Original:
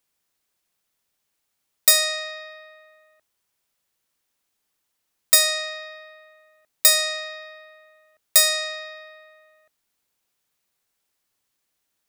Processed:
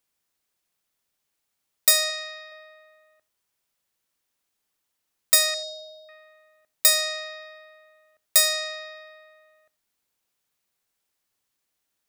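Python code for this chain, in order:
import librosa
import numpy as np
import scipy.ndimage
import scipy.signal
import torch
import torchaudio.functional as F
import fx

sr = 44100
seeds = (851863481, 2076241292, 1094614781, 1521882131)

y = fx.low_shelf(x, sr, hz=430.0, db=-11.5, at=(2.1, 2.52))
y = fx.brickwall_bandstop(y, sr, low_hz=970.0, high_hz=3300.0, at=(5.54, 6.09))
y = y + 10.0 ** (-23.0 / 20.0) * np.pad(y, (int(87 * sr / 1000.0), 0))[:len(y)]
y = F.gain(torch.from_numpy(y), -2.5).numpy()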